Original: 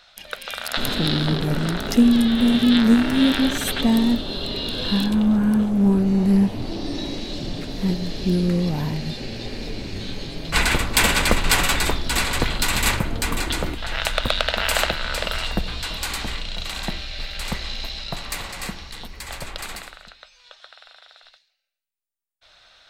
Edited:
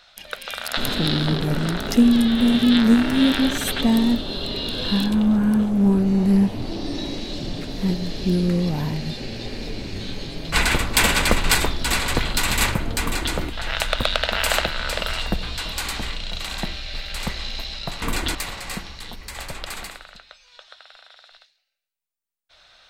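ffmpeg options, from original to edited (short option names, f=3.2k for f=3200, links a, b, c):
-filter_complex "[0:a]asplit=4[a][b][c][d];[a]atrim=end=11.552[e];[b]atrim=start=11.798:end=18.272[f];[c]atrim=start=13.258:end=13.592[g];[d]atrim=start=18.268[h];[e][f]acrossfade=d=0.004:c1=hsin:c2=hsin[i];[i][g]acrossfade=d=0.004:c1=hsin:c2=hsin[j];[j][h]acrossfade=d=0.004:c1=hsin:c2=hsin"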